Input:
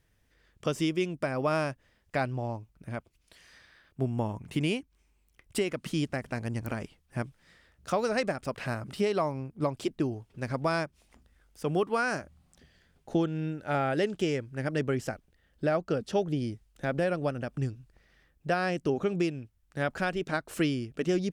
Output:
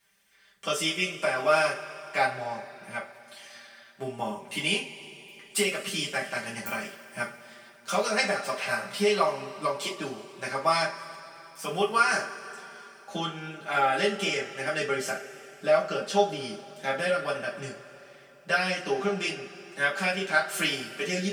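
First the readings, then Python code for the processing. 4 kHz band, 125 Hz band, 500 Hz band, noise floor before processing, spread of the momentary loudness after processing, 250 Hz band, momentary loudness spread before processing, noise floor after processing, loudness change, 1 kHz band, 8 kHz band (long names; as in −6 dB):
+10.0 dB, −8.0 dB, +2.0 dB, −70 dBFS, 17 LU, −5.0 dB, 10 LU, −53 dBFS, +3.0 dB, +6.0 dB, +10.5 dB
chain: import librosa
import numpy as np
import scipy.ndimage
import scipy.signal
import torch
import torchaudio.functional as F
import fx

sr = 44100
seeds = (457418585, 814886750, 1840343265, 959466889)

y = fx.highpass(x, sr, hz=1500.0, slope=6)
y = y + 0.72 * np.pad(y, (int(5.1 * sr / 1000.0), 0))[:len(y)]
y = fx.rev_double_slope(y, sr, seeds[0], early_s=0.26, late_s=3.4, knee_db=-22, drr_db=-6.0)
y = y * 10.0 ** (2.0 / 20.0)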